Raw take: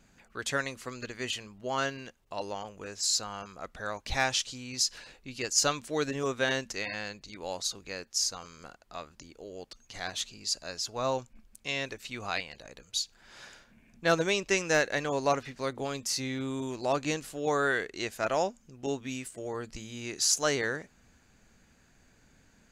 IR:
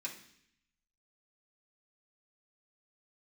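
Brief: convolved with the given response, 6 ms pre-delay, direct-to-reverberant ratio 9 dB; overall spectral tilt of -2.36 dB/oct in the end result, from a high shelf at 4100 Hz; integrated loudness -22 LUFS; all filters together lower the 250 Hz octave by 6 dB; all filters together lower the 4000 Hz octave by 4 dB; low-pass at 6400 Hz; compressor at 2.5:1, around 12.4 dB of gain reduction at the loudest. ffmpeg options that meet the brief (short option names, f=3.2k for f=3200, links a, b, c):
-filter_complex "[0:a]lowpass=6.4k,equalizer=f=250:t=o:g=-8,equalizer=f=4k:t=o:g=-8,highshelf=f=4.1k:g=5.5,acompressor=threshold=-41dB:ratio=2.5,asplit=2[a][b];[1:a]atrim=start_sample=2205,adelay=6[c];[b][c]afir=irnorm=-1:irlink=0,volume=-8.5dB[d];[a][d]amix=inputs=2:normalize=0,volume=20dB"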